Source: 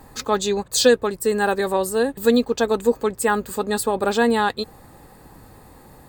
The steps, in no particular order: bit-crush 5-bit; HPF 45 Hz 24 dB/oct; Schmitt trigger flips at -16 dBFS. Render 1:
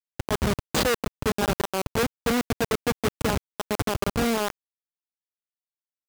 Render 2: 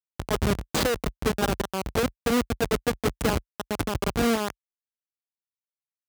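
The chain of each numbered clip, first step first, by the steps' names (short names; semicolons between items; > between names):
Schmitt trigger > HPF > bit-crush; Schmitt trigger > bit-crush > HPF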